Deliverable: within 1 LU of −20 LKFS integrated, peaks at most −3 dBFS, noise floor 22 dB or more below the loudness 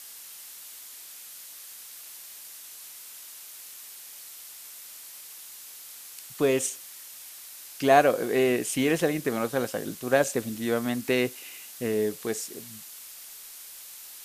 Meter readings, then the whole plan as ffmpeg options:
background noise floor −45 dBFS; target noise floor −48 dBFS; integrated loudness −26.0 LKFS; sample peak −5.0 dBFS; target loudness −20.0 LKFS
→ -af "afftdn=noise_reduction=6:noise_floor=-45"
-af "volume=6dB,alimiter=limit=-3dB:level=0:latency=1"

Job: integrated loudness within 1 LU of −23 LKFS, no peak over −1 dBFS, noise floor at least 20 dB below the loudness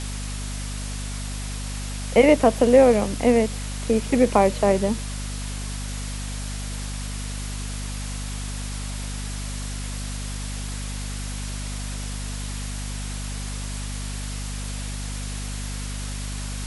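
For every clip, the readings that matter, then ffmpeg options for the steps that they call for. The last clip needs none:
mains hum 50 Hz; hum harmonics up to 250 Hz; level of the hum −28 dBFS; background noise floor −30 dBFS; target noise floor −46 dBFS; integrated loudness −25.5 LKFS; sample peak −3.5 dBFS; target loudness −23.0 LKFS
→ -af "bandreject=frequency=50:width_type=h:width=6,bandreject=frequency=100:width_type=h:width=6,bandreject=frequency=150:width_type=h:width=6,bandreject=frequency=200:width_type=h:width=6,bandreject=frequency=250:width_type=h:width=6"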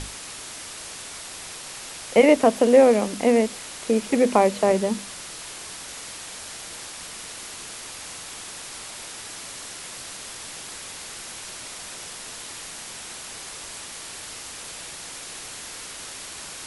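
mains hum none found; background noise floor −38 dBFS; target noise floor −46 dBFS
→ -af "afftdn=noise_reduction=8:noise_floor=-38"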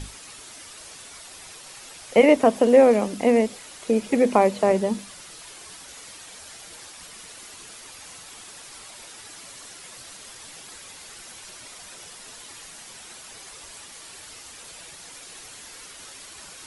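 background noise floor −44 dBFS; integrated loudness −19.5 LKFS; sample peak −4.0 dBFS; target loudness −23.0 LKFS
→ -af "volume=-3.5dB"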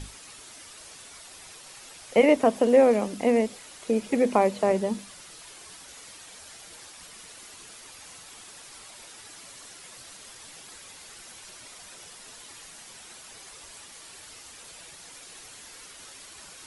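integrated loudness −23.0 LKFS; sample peak −7.5 dBFS; background noise floor −47 dBFS

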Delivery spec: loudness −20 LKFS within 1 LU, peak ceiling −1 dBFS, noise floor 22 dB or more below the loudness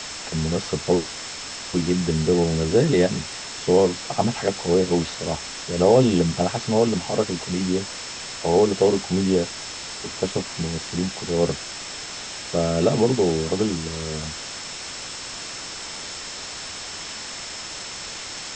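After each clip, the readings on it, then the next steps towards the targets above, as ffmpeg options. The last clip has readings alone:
interfering tone 5,300 Hz; level of the tone −39 dBFS; background noise floor −35 dBFS; target noise floor −46 dBFS; integrated loudness −23.5 LKFS; sample peak −5.0 dBFS; target loudness −20.0 LKFS
→ -af "bandreject=frequency=5300:width=30"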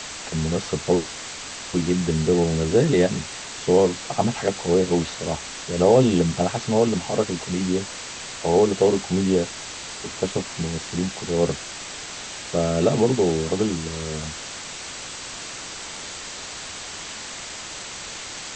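interfering tone none found; background noise floor −36 dBFS; target noise floor −46 dBFS
→ -af "afftdn=noise_reduction=10:noise_floor=-36"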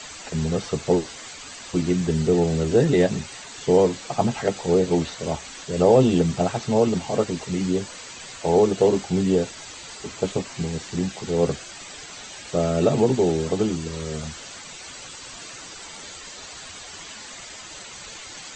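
background noise floor −40 dBFS; target noise floor −45 dBFS
→ -af "afftdn=noise_reduction=6:noise_floor=-40"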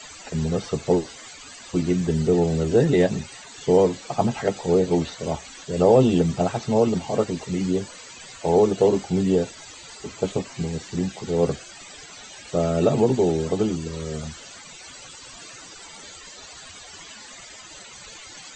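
background noise floor −43 dBFS; target noise floor −45 dBFS
→ -af "afftdn=noise_reduction=6:noise_floor=-43"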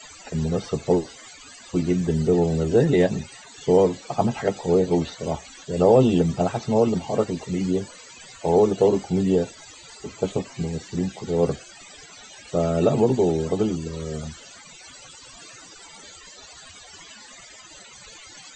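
background noise floor −46 dBFS; integrated loudness −23.0 LKFS; sample peak −5.5 dBFS; target loudness −20.0 LKFS
→ -af "volume=3dB"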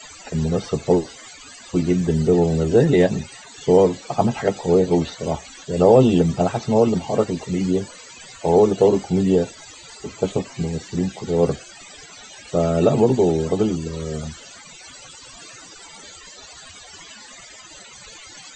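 integrated loudness −20.0 LKFS; sample peak −2.5 dBFS; background noise floor −43 dBFS

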